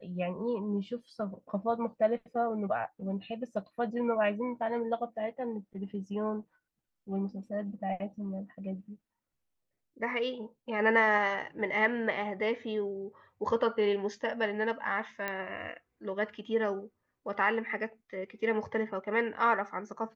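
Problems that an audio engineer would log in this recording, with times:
15.28 pop -19 dBFS

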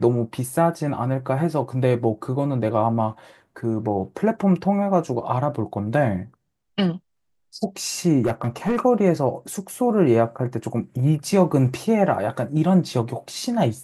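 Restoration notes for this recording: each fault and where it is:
8.25–8.8 clipped -16 dBFS

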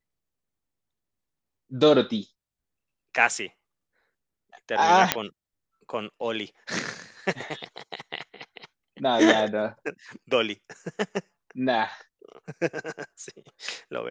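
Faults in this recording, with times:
5.12 pop -2 dBFS

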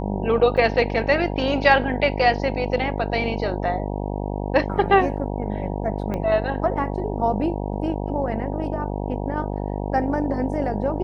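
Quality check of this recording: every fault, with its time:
buzz 50 Hz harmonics 19 -27 dBFS
0.57–0.58 gap 5.8 ms
6.14 pop -16 dBFS

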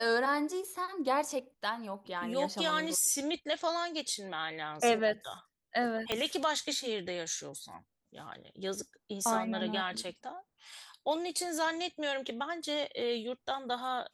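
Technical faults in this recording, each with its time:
6.12 pop -15 dBFS

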